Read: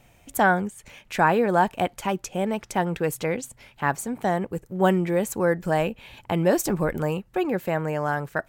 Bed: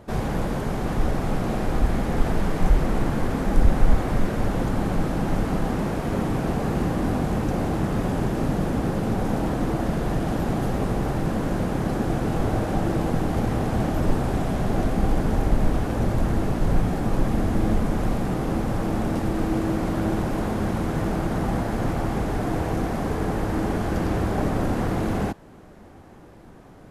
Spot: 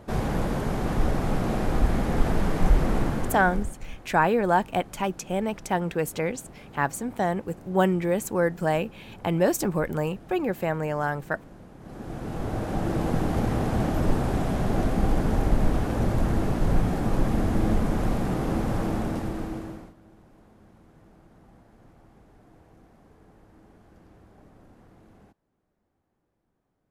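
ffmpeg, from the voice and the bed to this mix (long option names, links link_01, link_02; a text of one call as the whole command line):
ffmpeg -i stem1.wav -i stem2.wav -filter_complex "[0:a]adelay=2950,volume=-1.5dB[link_01];[1:a]volume=20dB,afade=type=out:start_time=2.96:duration=0.79:silence=0.0841395,afade=type=in:start_time=11.79:duration=1.37:silence=0.0891251,afade=type=out:start_time=18.8:duration=1.14:silence=0.0375837[link_02];[link_01][link_02]amix=inputs=2:normalize=0" out.wav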